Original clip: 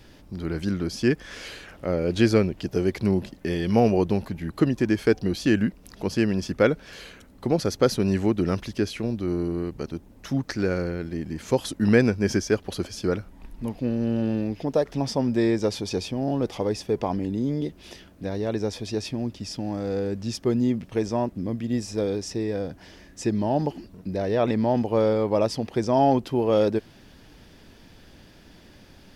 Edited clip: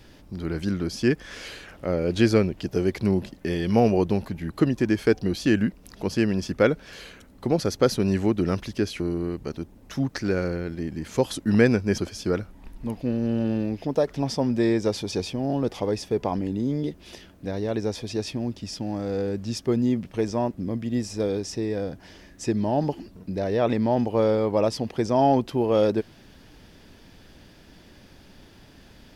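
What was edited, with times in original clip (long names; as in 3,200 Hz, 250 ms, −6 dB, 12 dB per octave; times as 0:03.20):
0:09.00–0:09.34: remove
0:12.32–0:12.76: remove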